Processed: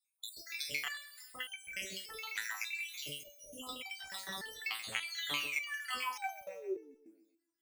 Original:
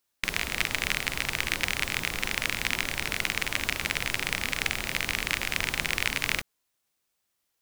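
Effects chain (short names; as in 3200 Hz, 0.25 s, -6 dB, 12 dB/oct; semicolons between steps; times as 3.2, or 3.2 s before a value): random spectral dropouts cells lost 82%; HPF 47 Hz; low shelf 230 Hz -11.5 dB; painted sound fall, 5.07–6.95, 260–4700 Hz -38 dBFS; in parallel at -5 dB: soft clip -21.5 dBFS, distortion -13 dB; on the sum: thinning echo 0.134 s, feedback 40%, high-pass 190 Hz, level -14 dB; stepped resonator 3.4 Hz 110–770 Hz; gain +5.5 dB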